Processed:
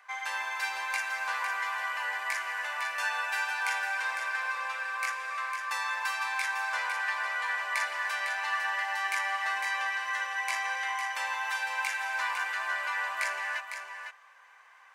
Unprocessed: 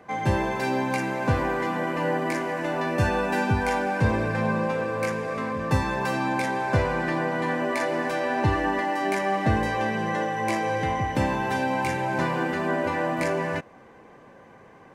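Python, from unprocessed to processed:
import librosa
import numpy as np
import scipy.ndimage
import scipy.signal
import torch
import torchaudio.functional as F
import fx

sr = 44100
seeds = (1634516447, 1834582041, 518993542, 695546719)

p1 = scipy.signal.sosfilt(scipy.signal.butter(4, 1100.0, 'highpass', fs=sr, output='sos'), x)
y = p1 + fx.echo_single(p1, sr, ms=504, db=-7.5, dry=0)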